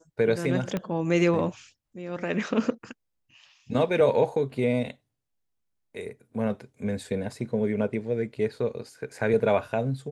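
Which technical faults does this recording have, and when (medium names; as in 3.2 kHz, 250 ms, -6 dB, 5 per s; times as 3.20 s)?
0.77 s: pop -16 dBFS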